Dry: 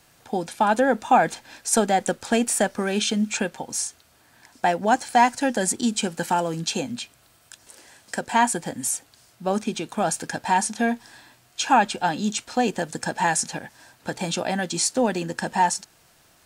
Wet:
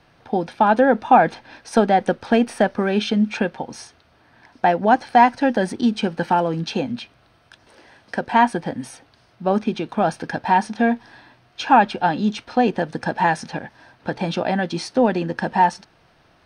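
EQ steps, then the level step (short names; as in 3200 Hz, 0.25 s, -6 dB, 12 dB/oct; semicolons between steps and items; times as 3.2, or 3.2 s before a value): polynomial smoothing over 15 samples; high shelf 2800 Hz -9.5 dB; +5.0 dB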